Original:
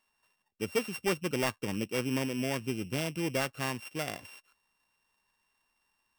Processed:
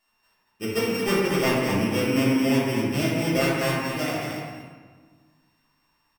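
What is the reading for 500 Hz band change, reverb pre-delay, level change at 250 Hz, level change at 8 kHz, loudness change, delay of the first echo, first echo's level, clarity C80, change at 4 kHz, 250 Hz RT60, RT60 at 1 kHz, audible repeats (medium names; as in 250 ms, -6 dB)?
+9.5 dB, 3 ms, +11.5 dB, +5.5 dB, +9.5 dB, 227 ms, -6.0 dB, -0.5 dB, +8.0 dB, 2.0 s, 1.5 s, 1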